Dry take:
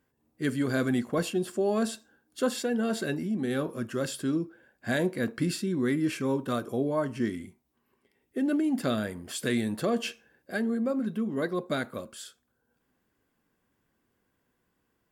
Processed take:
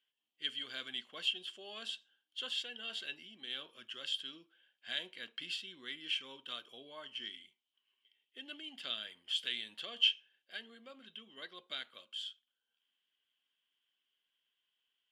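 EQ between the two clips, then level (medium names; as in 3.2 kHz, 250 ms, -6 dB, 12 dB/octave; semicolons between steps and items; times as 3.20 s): band-pass filter 3.1 kHz, Q 14; +13.5 dB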